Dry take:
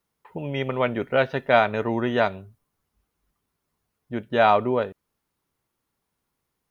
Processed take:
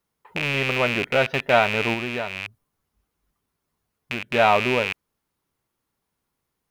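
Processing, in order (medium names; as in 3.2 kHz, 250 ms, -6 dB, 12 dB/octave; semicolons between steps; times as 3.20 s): rattle on loud lows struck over -42 dBFS, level -12 dBFS; 1.93–4.34 s: compression 5:1, threshold -25 dBFS, peak gain reduction 9.5 dB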